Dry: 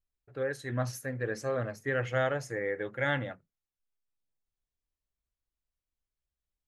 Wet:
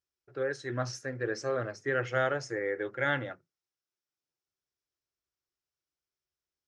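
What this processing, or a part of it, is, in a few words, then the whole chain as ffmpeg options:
car door speaker: -af "lowpass=8.4k,highpass=110,equalizer=f=210:t=q:w=4:g=-8,equalizer=f=360:t=q:w=4:g=8,equalizer=f=1.4k:t=q:w=4:g=5,equalizer=f=5.4k:t=q:w=4:g=9,lowpass=f=8.5k:w=0.5412,lowpass=f=8.5k:w=1.3066,volume=-1dB"

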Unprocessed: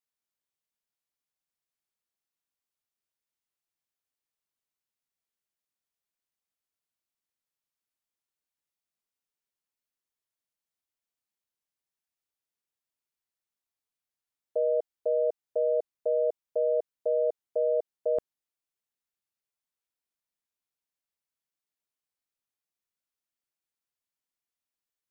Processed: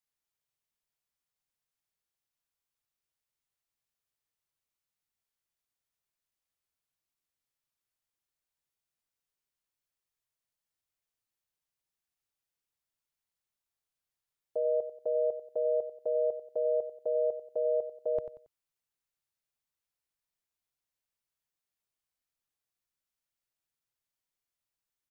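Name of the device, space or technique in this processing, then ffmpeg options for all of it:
car stereo with a boomy subwoofer: -af "lowshelf=f=160:t=q:w=1.5:g=6.5,alimiter=limit=-23.5dB:level=0:latency=1:release=13,equalizer=f=91:t=o:w=1:g=-4.5,aecho=1:1:92|184|276:0.266|0.0851|0.0272"

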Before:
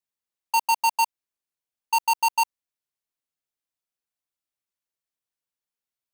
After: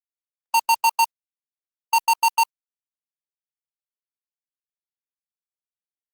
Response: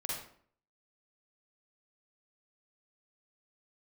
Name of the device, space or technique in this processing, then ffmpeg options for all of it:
video call: -af "highpass=150,dynaudnorm=f=100:g=7:m=8dB,agate=range=-18dB:threshold=-20dB:ratio=16:detection=peak,volume=-5dB" -ar 48000 -c:a libopus -b:a 32k

